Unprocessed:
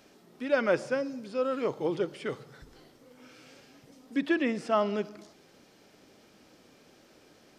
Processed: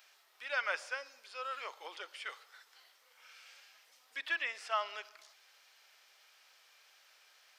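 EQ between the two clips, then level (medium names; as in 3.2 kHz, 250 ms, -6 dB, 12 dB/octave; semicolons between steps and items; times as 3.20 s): Bessel high-pass 1.1 kHz, order 4; tilt shelf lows -7 dB, about 1.4 kHz; peaking EQ 8.3 kHz -10 dB 2.4 oct; +1.0 dB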